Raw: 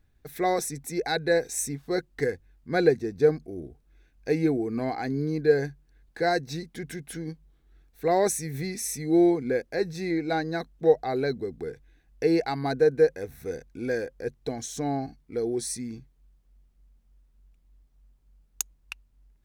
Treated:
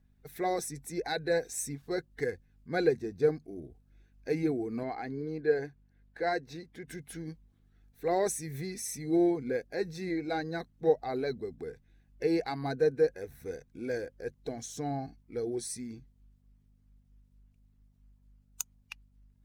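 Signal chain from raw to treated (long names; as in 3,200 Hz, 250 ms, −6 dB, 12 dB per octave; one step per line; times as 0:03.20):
spectral magnitudes quantised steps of 15 dB
0:04.83–0:06.88: bass and treble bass −7 dB, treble −9 dB
mains hum 50 Hz, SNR 31 dB
level −5.5 dB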